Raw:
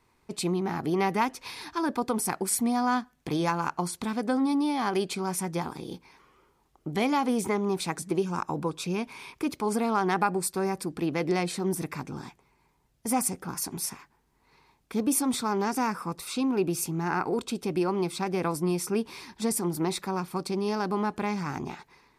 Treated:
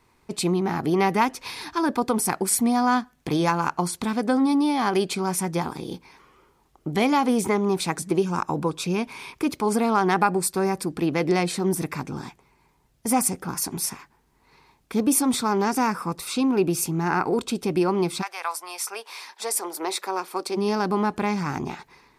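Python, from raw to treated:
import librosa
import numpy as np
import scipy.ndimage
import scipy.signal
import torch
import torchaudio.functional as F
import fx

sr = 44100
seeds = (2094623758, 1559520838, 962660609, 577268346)

y = fx.highpass(x, sr, hz=fx.line((18.21, 920.0), (20.56, 300.0)), slope=24, at=(18.21, 20.56), fade=0.02)
y = F.gain(torch.from_numpy(y), 5.0).numpy()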